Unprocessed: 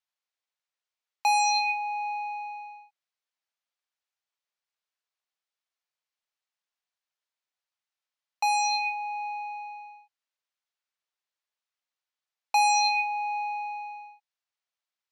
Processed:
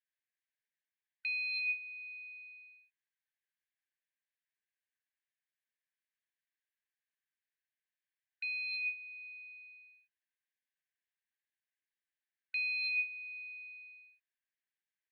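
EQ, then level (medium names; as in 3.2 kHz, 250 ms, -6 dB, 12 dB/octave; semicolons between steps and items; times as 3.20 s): brick-wall FIR band-pass 1.5–4.9 kHz; resonant high shelf 2 kHz -7.5 dB, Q 1.5; static phaser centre 2.3 kHz, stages 4; +4.0 dB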